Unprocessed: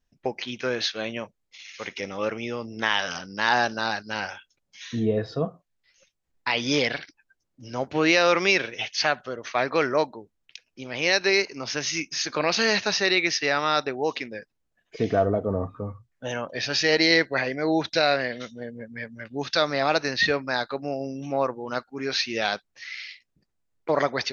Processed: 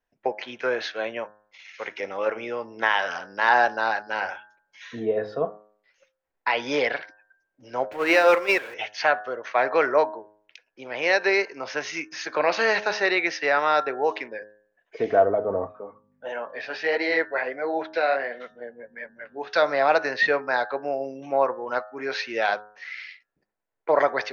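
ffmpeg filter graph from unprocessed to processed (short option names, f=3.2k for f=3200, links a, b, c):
-filter_complex "[0:a]asettb=1/sr,asplit=3[a][b][c];[a]atrim=end=7.924[d];[b]atrim=start=7.92:end=8.74,asetpts=PTS-STARTPTS,afade=t=in:d=0.004:c=qsin,afade=t=out:st=0.816:d=0.004:c=qsin,aeval=exprs='val(0)+0.5*0.0841*sgn(val(0))':c=same,agate=range=-14dB:threshold=-18dB:ratio=16:release=100:detection=peak[e];[c]atrim=start=8.736[f];[d][e]acrossfade=d=0.004:c1=hsin:c2=qsin[g];[g][f]acrossfade=d=0.004:c1=qsin:c2=hsin,asettb=1/sr,asplit=3[h][i][j];[h]atrim=end=15.724[k];[i]atrim=start=15.72:end=19.5,asetpts=PTS-STARTPTS,afade=t=in:d=0.004:c=qsin,afade=t=out:st=3.776:d=0.004:c=qsin,aeval=exprs='val(0)+0.00891*(sin(2*PI*50*n/s)+sin(2*PI*2*50*n/s)/2+sin(2*PI*3*50*n/s)/3+sin(2*PI*4*50*n/s)/4+sin(2*PI*5*50*n/s)/5)':c=same,highpass=220,lowpass=4.1k,flanger=delay=3.1:depth=6.7:regen=-40:speed=1.5:shape=triangular[l];[j]atrim=start=19.496[m];[k][l]acrossfade=d=0.004:c1=hsin:c2=qsin[n];[n][m]acrossfade=d=0.004:c1=qsin:c2=hsin,acrossover=split=400 2100:gain=0.126 1 0.158[o][p][q];[o][p][q]amix=inputs=3:normalize=0,bandreject=f=1.2k:w=12,bandreject=f=105.3:t=h:w=4,bandreject=f=210.6:t=h:w=4,bandreject=f=315.9:t=h:w=4,bandreject=f=421.2:t=h:w=4,bandreject=f=526.5:t=h:w=4,bandreject=f=631.8:t=h:w=4,bandreject=f=737.1:t=h:w=4,bandreject=f=842.4:t=h:w=4,bandreject=f=947.7:t=h:w=4,bandreject=f=1.053k:t=h:w=4,bandreject=f=1.1583k:t=h:w=4,bandreject=f=1.2636k:t=h:w=4,bandreject=f=1.3689k:t=h:w=4,bandreject=f=1.4742k:t=h:w=4,bandreject=f=1.5795k:t=h:w=4,bandreject=f=1.6848k:t=h:w=4,bandreject=f=1.7901k:t=h:w=4,volume=5.5dB"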